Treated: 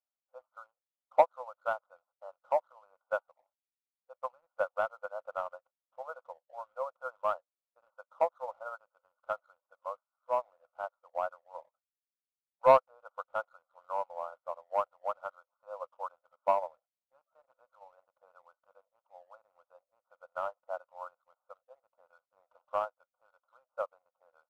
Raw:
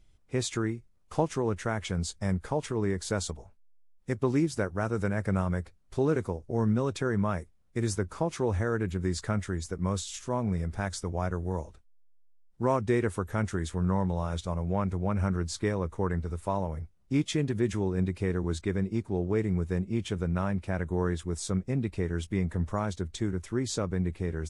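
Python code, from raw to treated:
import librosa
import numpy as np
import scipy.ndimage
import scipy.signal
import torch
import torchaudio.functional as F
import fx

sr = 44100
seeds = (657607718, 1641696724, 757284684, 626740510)

y = fx.brickwall_bandpass(x, sr, low_hz=500.0, high_hz=1500.0)
y = fx.leveller(y, sr, passes=1)
y = fx.upward_expand(y, sr, threshold_db=-40.0, expansion=2.5)
y = F.gain(torch.from_numpy(y), 7.0).numpy()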